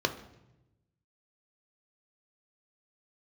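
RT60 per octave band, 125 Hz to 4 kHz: 1.6 s, 1.2 s, 1.0 s, 0.85 s, 0.80 s, 0.75 s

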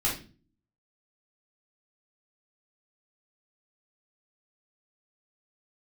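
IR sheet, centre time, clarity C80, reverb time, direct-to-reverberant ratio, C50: 29 ms, 13.0 dB, 0.35 s, -5.5 dB, 6.5 dB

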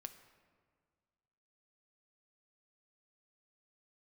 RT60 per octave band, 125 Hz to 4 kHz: 2.2 s, 2.0 s, 1.9 s, 1.8 s, 1.5 s, 1.0 s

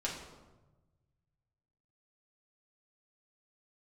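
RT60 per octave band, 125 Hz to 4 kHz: 2.4 s, 1.4 s, 1.2 s, 1.1 s, 0.85 s, 0.70 s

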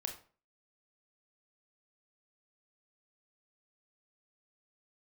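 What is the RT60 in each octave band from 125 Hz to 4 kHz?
0.45 s, 0.40 s, 0.45 s, 0.40 s, 0.35 s, 0.30 s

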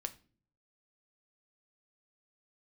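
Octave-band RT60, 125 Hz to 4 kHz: 0.85 s, 0.70 s, 0.50 s, 0.35 s, 0.35 s, 0.35 s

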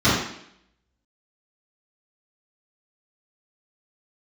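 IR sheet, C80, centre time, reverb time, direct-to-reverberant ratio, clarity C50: 4.5 dB, 59 ms, 0.70 s, -13.5 dB, 0.5 dB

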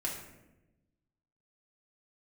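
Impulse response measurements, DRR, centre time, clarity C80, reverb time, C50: -5.0 dB, 39 ms, 7.5 dB, 1.0 s, 4.5 dB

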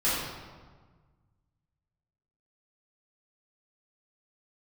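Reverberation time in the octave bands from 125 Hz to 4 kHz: 2.4 s, 1.8 s, 1.5 s, 1.5 s, 1.2 s, 0.95 s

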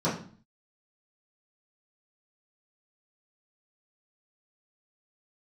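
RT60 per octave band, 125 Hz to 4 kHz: 0.60 s, 0.60 s, 0.45 s, 0.45 s, 0.40 s, 0.40 s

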